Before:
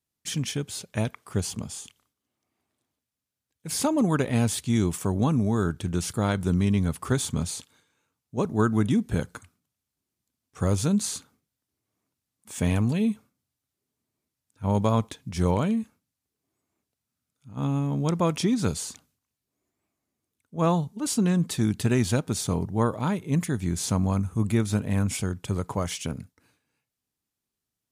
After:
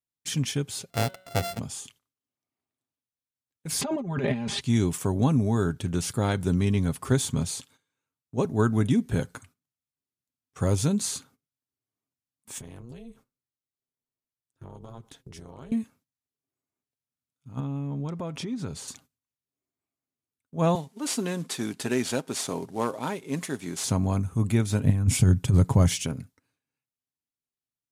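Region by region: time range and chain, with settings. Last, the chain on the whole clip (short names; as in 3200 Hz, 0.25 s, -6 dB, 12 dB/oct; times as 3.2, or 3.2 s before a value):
0.9–1.59 sample sorter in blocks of 64 samples + de-hum 186.9 Hz, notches 23
3.81–4.61 LPF 3200 Hz + comb 5 ms, depth 81% + negative-ratio compressor -29 dBFS
12.58–15.72 notch 2400 Hz, Q 11 + compressor 16:1, threshold -36 dBFS + AM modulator 240 Hz, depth 75%
17.6–18.88 high shelf 4500 Hz -11.5 dB + compressor 4:1, threshold -31 dBFS
20.75–23.84 CVSD 64 kbps + HPF 290 Hz
24.84–26.05 tone controls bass +12 dB, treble +2 dB + negative-ratio compressor -17 dBFS, ratio -0.5
whole clip: gate -55 dBFS, range -13 dB; comb 7.5 ms, depth 31%; dynamic EQ 1200 Hz, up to -4 dB, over -45 dBFS, Q 3.5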